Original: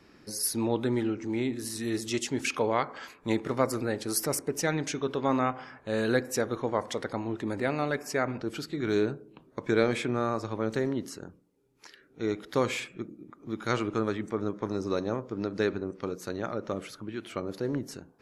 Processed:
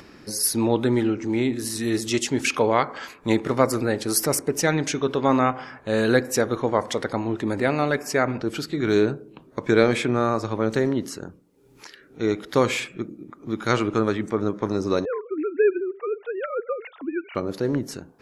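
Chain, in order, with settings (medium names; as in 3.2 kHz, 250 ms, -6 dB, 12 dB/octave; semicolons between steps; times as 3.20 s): 15.05–17.35 s: formants replaced by sine waves; upward compressor, threshold -49 dBFS; trim +7 dB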